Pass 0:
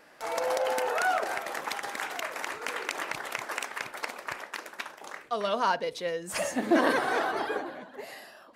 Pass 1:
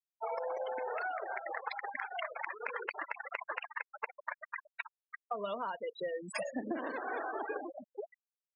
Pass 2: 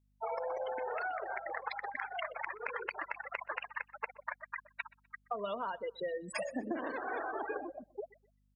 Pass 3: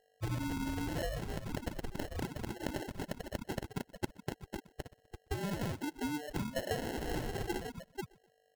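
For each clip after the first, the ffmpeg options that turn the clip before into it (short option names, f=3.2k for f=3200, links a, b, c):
-af "highpass=f=120:w=0.5412,highpass=f=120:w=1.3066,afftfilt=real='re*gte(hypot(re,im),0.0501)':imag='im*gte(hypot(re,im),0.0501)':win_size=1024:overlap=0.75,acompressor=threshold=-36dB:ratio=16,volume=2dB"
-af "aeval=exprs='val(0)+0.000251*(sin(2*PI*50*n/s)+sin(2*PI*2*50*n/s)/2+sin(2*PI*3*50*n/s)/3+sin(2*PI*4*50*n/s)/4+sin(2*PI*5*50*n/s)/5)':c=same,aecho=1:1:125|250:0.0668|0.0241"
-af "afftfilt=real='real(if(between(b,1,1012),(2*floor((b-1)/92)+1)*92-b,b),0)':imag='imag(if(between(b,1,1012),(2*floor((b-1)/92)+1)*92-b,b),0)*if(between(b,1,1012),-1,1)':win_size=2048:overlap=0.75,acrusher=samples=37:mix=1:aa=0.000001,volume=1dB"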